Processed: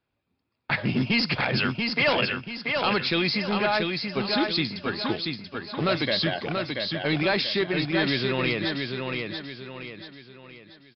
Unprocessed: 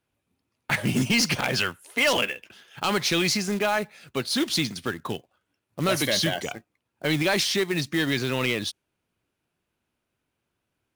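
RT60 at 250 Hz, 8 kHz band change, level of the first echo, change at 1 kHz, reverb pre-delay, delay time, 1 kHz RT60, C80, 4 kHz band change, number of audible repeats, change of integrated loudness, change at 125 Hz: no reverb audible, below −25 dB, −4.5 dB, +1.5 dB, no reverb audible, 684 ms, no reverb audible, no reverb audible, 0.0 dB, 4, −0.5 dB, +0.5 dB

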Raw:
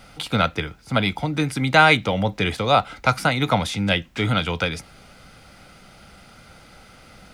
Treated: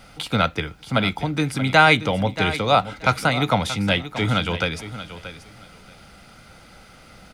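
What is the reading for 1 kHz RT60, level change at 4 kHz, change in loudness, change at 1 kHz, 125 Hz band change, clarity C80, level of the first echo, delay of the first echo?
no reverb audible, +0.5 dB, 0.0 dB, 0.0 dB, 0.0 dB, no reverb audible, −13.0 dB, 630 ms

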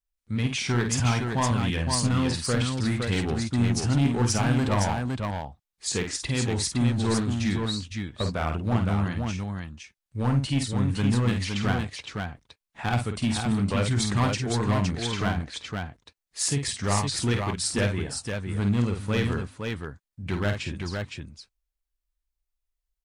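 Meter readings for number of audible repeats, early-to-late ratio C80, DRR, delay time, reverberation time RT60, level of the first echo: 2, no reverb audible, no reverb audible, 50 ms, no reverb audible, −6.5 dB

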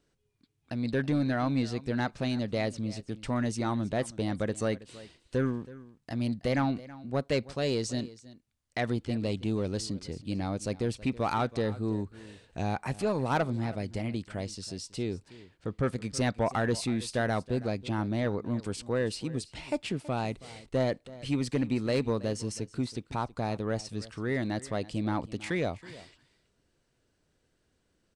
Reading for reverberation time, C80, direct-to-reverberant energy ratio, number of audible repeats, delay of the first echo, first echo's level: no reverb audible, no reverb audible, no reverb audible, 1, 324 ms, −18.5 dB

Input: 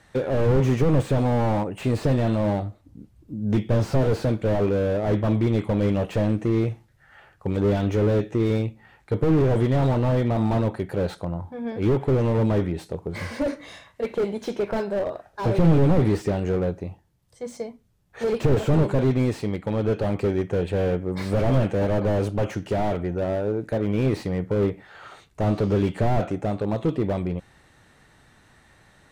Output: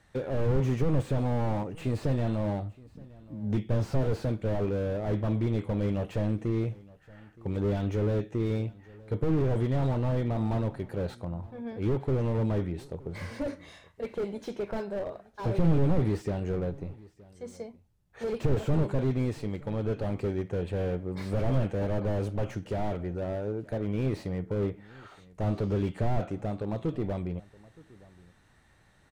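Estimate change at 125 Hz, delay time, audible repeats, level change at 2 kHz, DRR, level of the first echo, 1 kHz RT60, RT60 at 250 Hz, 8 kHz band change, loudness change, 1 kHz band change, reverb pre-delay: −5.5 dB, 920 ms, 1, −8.5 dB, no reverb audible, −22.5 dB, no reverb audible, no reverb audible, can't be measured, −7.0 dB, −8.5 dB, no reverb audible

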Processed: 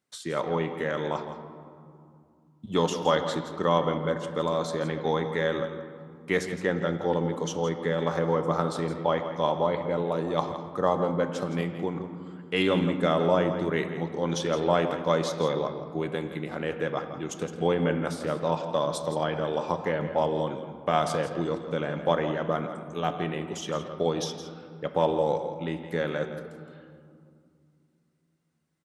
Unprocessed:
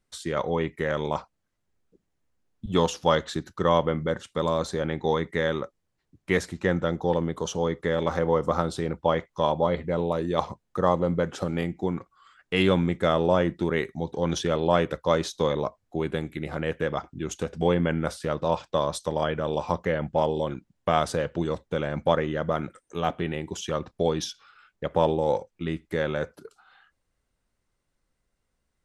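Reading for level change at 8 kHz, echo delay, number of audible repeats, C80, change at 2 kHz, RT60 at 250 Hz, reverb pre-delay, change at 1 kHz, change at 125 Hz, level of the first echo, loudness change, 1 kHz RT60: −1.5 dB, 166 ms, 1, 8.0 dB, −1.0 dB, 3.5 s, 7 ms, −1.0 dB, −2.5 dB, −11.5 dB, −1.5 dB, 2.4 s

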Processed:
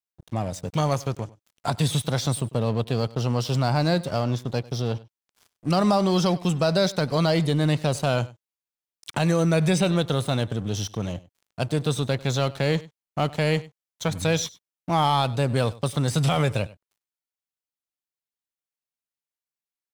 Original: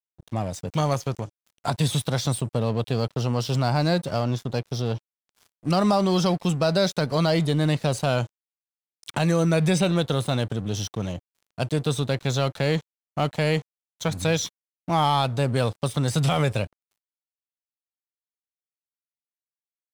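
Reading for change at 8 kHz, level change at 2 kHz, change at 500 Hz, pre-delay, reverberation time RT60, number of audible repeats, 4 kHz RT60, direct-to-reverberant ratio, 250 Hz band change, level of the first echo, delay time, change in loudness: 0.0 dB, 0.0 dB, 0.0 dB, no reverb audible, no reverb audible, 1, no reverb audible, no reverb audible, 0.0 dB, −20.5 dB, 98 ms, 0.0 dB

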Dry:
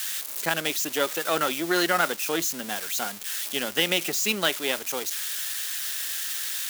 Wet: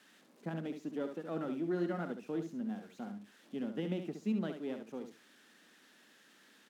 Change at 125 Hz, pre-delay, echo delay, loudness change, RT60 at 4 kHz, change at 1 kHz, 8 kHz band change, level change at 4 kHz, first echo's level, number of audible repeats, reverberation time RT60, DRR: −1.0 dB, no reverb audible, 68 ms, −14.0 dB, no reverb audible, −19.0 dB, below −35 dB, −30.0 dB, −7.5 dB, 2, no reverb audible, no reverb audible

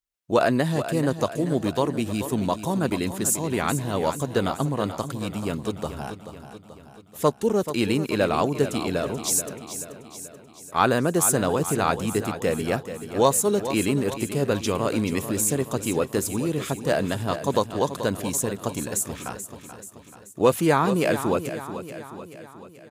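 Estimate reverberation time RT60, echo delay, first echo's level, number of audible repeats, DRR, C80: no reverb audible, 433 ms, −11.0 dB, 5, no reverb audible, no reverb audible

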